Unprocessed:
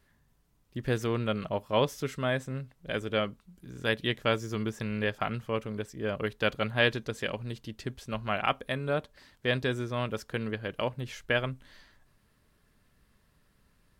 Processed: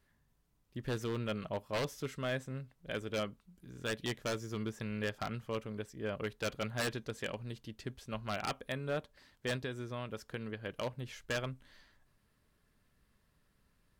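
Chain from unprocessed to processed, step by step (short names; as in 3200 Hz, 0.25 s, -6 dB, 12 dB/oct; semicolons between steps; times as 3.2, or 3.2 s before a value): 9.55–10.66 compressor 3:1, threshold -31 dBFS, peak gain reduction 5.5 dB; wavefolder -21.5 dBFS; gain -6 dB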